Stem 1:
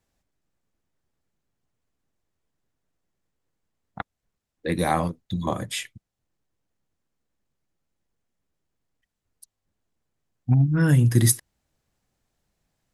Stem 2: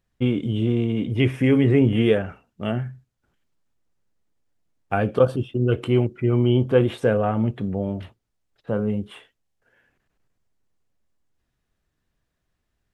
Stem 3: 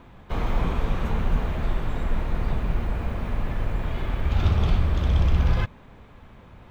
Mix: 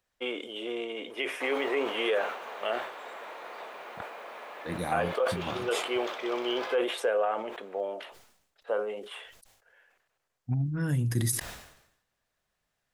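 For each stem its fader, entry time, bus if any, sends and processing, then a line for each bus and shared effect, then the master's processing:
-10.5 dB, 0.00 s, no bus, no send, dry
+0.5 dB, 0.00 s, bus A, no send, dry
-4.0 dB, 1.10 s, bus A, no send, dry
bus A: 0.0 dB, HPF 490 Hz 24 dB/oct; limiter -19 dBFS, peak gain reduction 11 dB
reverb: off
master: sustainer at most 72 dB/s

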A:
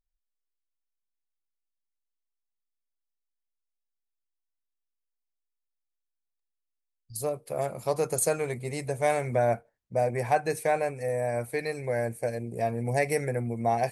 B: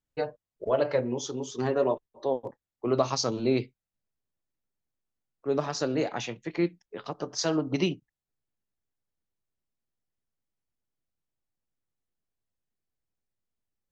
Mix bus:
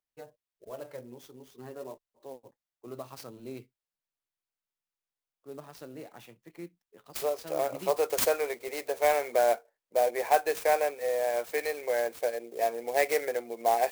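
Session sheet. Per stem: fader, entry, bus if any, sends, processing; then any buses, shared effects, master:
+1.0 dB, 0.00 s, no send, HPF 380 Hz 24 dB/oct
-16.5 dB, 0.00 s, no send, dry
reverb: off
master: clock jitter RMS 0.032 ms

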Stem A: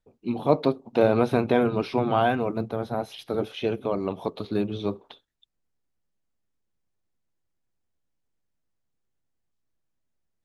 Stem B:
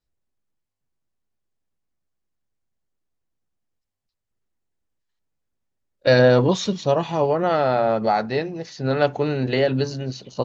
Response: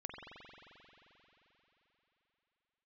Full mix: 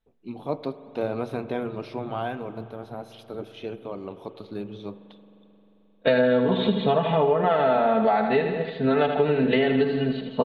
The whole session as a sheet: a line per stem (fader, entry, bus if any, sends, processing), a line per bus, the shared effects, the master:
-10.0 dB, 0.00 s, send -7.5 dB, no echo send, dry
+2.5 dB, 0.00 s, no send, echo send -9 dB, elliptic low-pass 3600 Hz, stop band 40 dB; comb 4.5 ms, depth 89%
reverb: on, RT60 3.9 s, pre-delay 44 ms
echo: feedback echo 80 ms, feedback 60%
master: compressor 8:1, threshold -17 dBFS, peak gain reduction 12 dB

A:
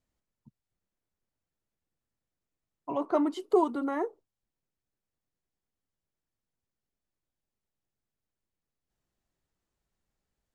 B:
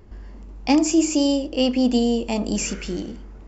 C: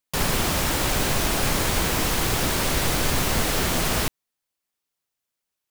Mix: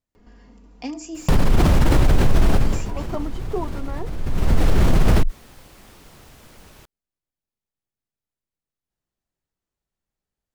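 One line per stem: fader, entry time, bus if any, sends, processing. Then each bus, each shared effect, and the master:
-3.5 dB, 0.00 s, no send, dry
-15.0 dB, 0.15 s, no send, comb 4.2 ms, depth 67%; three-band squash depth 40%
+1.0 dB, 1.15 s, no send, tilt -3.5 dB/oct; fast leveller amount 70%; auto duck -22 dB, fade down 0.40 s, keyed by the first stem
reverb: off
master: limiter -7 dBFS, peak gain reduction 11 dB

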